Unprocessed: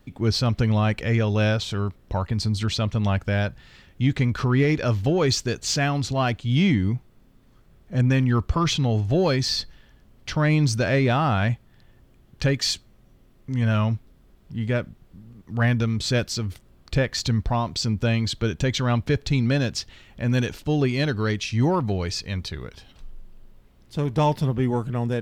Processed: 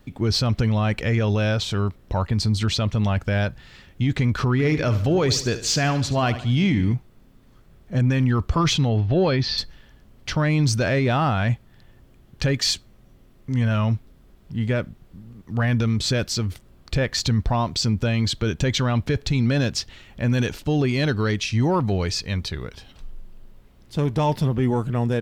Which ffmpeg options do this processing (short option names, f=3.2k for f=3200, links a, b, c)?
-filter_complex "[0:a]asplit=3[a][b][c];[a]afade=t=out:st=4.58:d=0.02[d];[b]aecho=1:1:72|144|216|288:0.2|0.0898|0.0404|0.0182,afade=t=in:st=4.58:d=0.02,afade=t=out:st=6.93:d=0.02[e];[c]afade=t=in:st=6.93:d=0.02[f];[d][e][f]amix=inputs=3:normalize=0,asettb=1/sr,asplit=3[g][h][i];[g]atrim=end=8.894[j];[h]atrim=start=8.89:end=9.58,asetpts=PTS-STARTPTS,afade=t=in:d=0.004:c=qsin,afade=t=out:st=0.686:d=0.004:c=qsin,lowpass=f=4.3k:w=0.5412,lowpass=f=4.3k:w=1.3066[k];[i]atrim=start=9.576[l];[j][k]acrossfade=d=0.004:c1=hsin:c2=qsin[m];[m][l]acrossfade=d=0.004:c1=qsin:c2=hsin,deesser=0.4,alimiter=limit=-15dB:level=0:latency=1:release=15,volume=3dB"